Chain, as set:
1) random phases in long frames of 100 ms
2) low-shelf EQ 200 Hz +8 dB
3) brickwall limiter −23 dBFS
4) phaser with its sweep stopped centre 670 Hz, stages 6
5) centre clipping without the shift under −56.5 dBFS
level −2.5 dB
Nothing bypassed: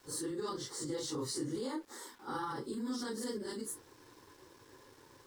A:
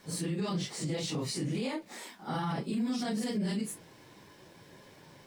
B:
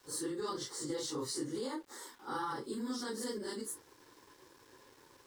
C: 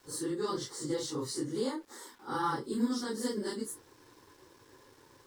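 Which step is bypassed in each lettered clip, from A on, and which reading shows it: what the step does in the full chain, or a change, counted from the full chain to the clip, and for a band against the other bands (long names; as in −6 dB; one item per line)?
4, 125 Hz band +9.5 dB
2, 125 Hz band −4.0 dB
3, average gain reduction 2.0 dB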